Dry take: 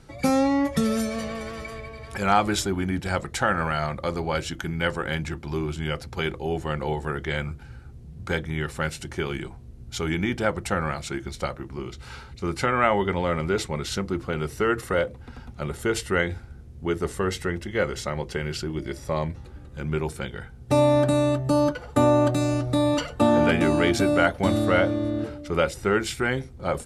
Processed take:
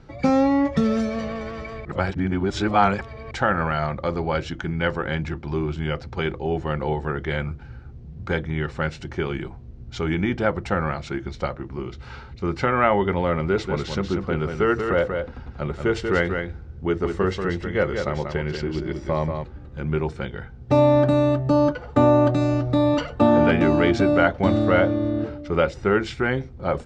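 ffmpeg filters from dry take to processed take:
-filter_complex "[0:a]asettb=1/sr,asplit=3[s0][s1][s2];[s0]atrim=end=13.484[s3];[s1]atrim=start=13.48:end=19.44,asetpts=PTS-STARTPTS,afade=t=in:d=0.004:c=qsin,afade=t=out:st=5.956:d=0.004:c=qsin,aecho=1:1:187:0.501,atrim=end_sample=262836[s4];[s2]atrim=start=19.436[s5];[s3][s4]acrossfade=d=0.004:c1=hsin:c2=qsin[s6];[s6][s5]acrossfade=d=0.004:c1=qsin:c2=hsin,asplit=3[s7][s8][s9];[s7]atrim=end=1.852[s10];[s8]atrim=start=1.848:end=3.312,asetpts=PTS-STARTPTS,areverse[s11];[s9]atrim=start=3.308[s12];[s10][s11]acrossfade=d=0.004:c1=hsin:c2=hsin[s13];[s13][s12]acrossfade=d=0.004:c1=hsin:c2=hsin,lowpass=f=6300:w=0.5412,lowpass=f=6300:w=1.3066,highshelf=f=3200:g=-10,volume=1.41"

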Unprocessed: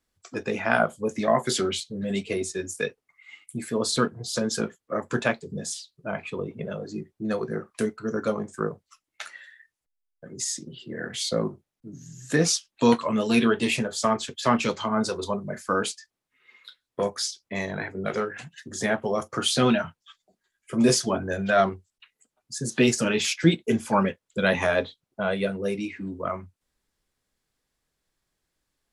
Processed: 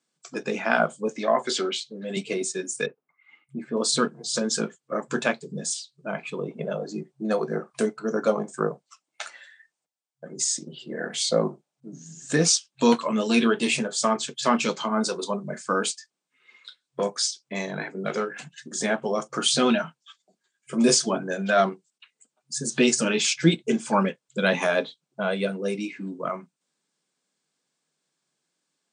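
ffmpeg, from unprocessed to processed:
-filter_complex "[0:a]asettb=1/sr,asplit=3[s0][s1][s2];[s0]atrim=end=1.094[s3];[s1]atrim=start=1.09:end=2.17,asetpts=PTS-STARTPTS,afade=t=in:d=0.004:c=qsin,afade=t=out:st=1.076:d=0.004:c=qsin,highpass=280,lowpass=5200[s4];[s2]atrim=start=2.166[s5];[s3][s4]acrossfade=d=0.004:c1=hsin:c2=qsin[s6];[s6][s5]acrossfade=d=0.004:c1=qsin:c2=hsin,asettb=1/sr,asplit=3[s7][s8][s9];[s7]atrim=end=2.864[s10];[s8]atrim=start=2.86:end=3.77,asetpts=PTS-STARTPTS,afade=t=in:d=0.004:c=qsin,afade=t=out:st=0.906:d=0.004:c=qsin,lowpass=1400[s11];[s9]atrim=start=3.766[s12];[s10][s11]acrossfade=d=0.004:c1=hsin:c2=qsin[s13];[s13][s12]acrossfade=d=0.004:c1=qsin:c2=hsin,asettb=1/sr,asplit=3[s14][s15][s16];[s14]atrim=end=6.434[s17];[s15]atrim=start=6.43:end=12.32,asetpts=PTS-STARTPTS,afade=t=in:d=0.004:c=qsin,afade=t=out:st=5.886:d=0.004:c=qsin,equalizer=f=710:t=o:w=1.1:g=7.5[s18];[s16]atrim=start=12.316[s19];[s17][s18]acrossfade=d=0.004:c1=hsin:c2=qsin[s20];[s20][s19]acrossfade=d=0.004:c1=qsin:c2=hsin,bandreject=f=1900:w=14,afftfilt=real='re*between(b*sr/4096,130,9300)':imag='im*between(b*sr/4096,130,9300)':win_size=4096:overlap=0.75,highshelf=f=5700:g=7.5"

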